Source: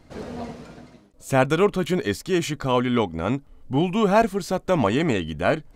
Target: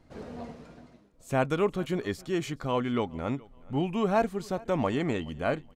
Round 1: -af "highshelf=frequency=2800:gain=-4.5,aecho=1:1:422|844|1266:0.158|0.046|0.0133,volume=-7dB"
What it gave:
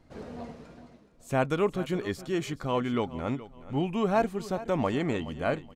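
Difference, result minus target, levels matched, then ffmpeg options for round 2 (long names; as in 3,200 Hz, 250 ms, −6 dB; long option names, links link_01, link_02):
echo-to-direct +7.5 dB
-af "highshelf=frequency=2800:gain=-4.5,aecho=1:1:422|844:0.0668|0.0194,volume=-7dB"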